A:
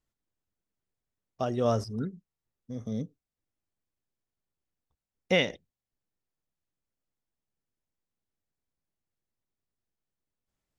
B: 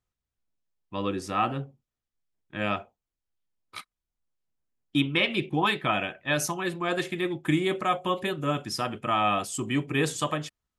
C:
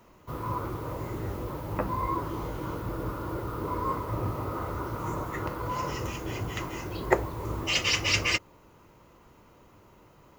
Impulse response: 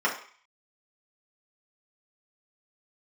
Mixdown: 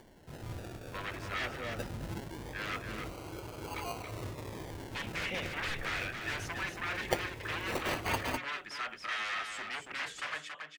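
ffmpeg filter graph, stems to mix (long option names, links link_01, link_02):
-filter_complex "[0:a]volume=-17dB[link_01];[1:a]aeval=exprs='0.0422*(abs(mod(val(0)/0.0422+3,4)-2)-1)':channel_layout=same,bandpass=frequency=1900:width_type=q:width=1.7:csg=0,volume=1.5dB,asplit=2[link_02][link_03];[link_03]volume=-6dB[link_04];[2:a]acrusher=samples=34:mix=1:aa=0.000001:lfo=1:lforange=20.4:lforate=0.21,volume=-9.5dB[link_05];[link_04]aecho=0:1:278:1[link_06];[link_01][link_02][link_05][link_06]amix=inputs=4:normalize=0,bandreject=frequency=60:width_type=h:width=6,bandreject=frequency=120:width_type=h:width=6,bandreject=frequency=180:width_type=h:width=6,bandreject=frequency=240:width_type=h:width=6,bandreject=frequency=300:width_type=h:width=6,acompressor=mode=upward:threshold=-50dB:ratio=2.5"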